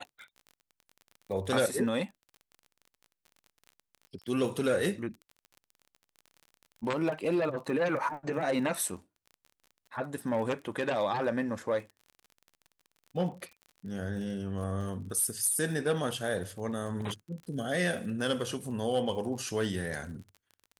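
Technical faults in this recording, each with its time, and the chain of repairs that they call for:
surface crackle 34 per second −41 dBFS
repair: click removal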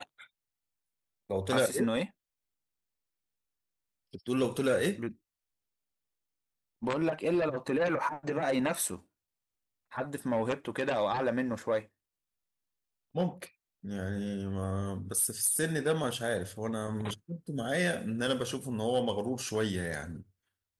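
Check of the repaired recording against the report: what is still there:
none of them is left

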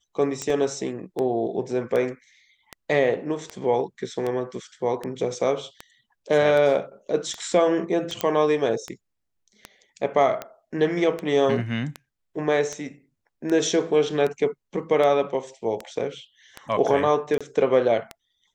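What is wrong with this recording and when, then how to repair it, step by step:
scratch tick 78 rpm −16 dBFS
0:00.50: drop-out 3.1 ms
0:08.21: click −8 dBFS
0:17.38–0:17.41: drop-out 26 ms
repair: click removal
repair the gap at 0:00.50, 3.1 ms
repair the gap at 0:17.38, 26 ms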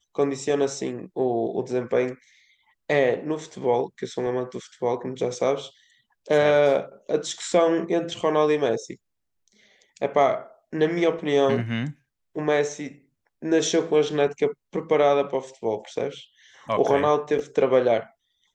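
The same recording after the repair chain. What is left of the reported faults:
none of them is left

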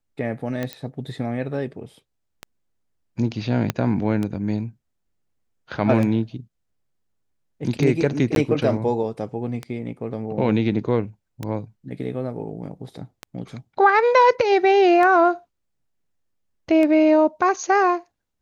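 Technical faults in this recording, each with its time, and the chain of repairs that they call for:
scratch tick 33 1/3 rpm −14 dBFS
0:00.73: click −15 dBFS
0:03.70: click −7 dBFS
0:08.35–0:08.36: drop-out 12 ms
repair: click removal
repair the gap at 0:08.35, 12 ms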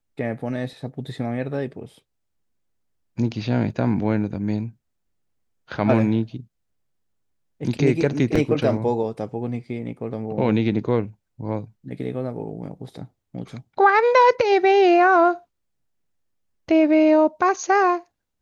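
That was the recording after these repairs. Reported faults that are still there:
0:03.70: click

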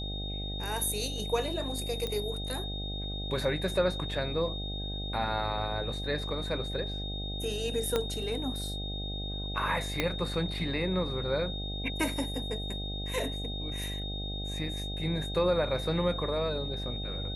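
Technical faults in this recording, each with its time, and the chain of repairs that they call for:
mains buzz 50 Hz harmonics 16 −37 dBFS
whistle 3,700 Hz −38 dBFS
0:02.07: click −20 dBFS
0:07.96: click −14 dBFS
0:10.00: click −13 dBFS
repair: click removal
notch filter 3,700 Hz, Q 30
hum removal 50 Hz, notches 16

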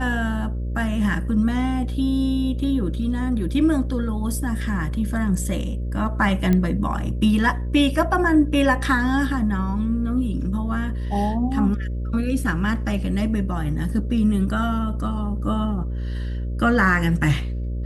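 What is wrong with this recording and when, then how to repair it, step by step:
mains buzz 60 Hz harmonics 10 −26 dBFS
0:06.53: click −10 dBFS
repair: click removal
hum removal 60 Hz, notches 10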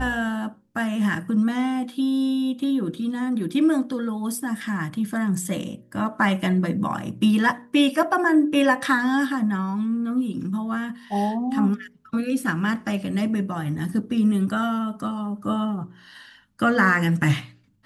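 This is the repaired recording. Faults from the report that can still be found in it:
none of them is left

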